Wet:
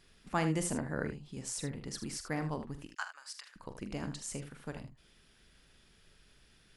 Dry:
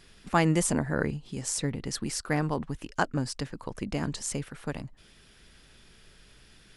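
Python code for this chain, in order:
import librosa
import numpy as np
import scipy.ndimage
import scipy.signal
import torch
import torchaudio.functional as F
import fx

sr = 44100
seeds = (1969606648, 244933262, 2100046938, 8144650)

y = fx.highpass(x, sr, hz=1100.0, slope=24, at=(2.87, 3.56))
y = fx.room_early_taps(y, sr, ms=(44, 78), db=(-11.0, -11.0))
y = y * 10.0 ** (-8.5 / 20.0)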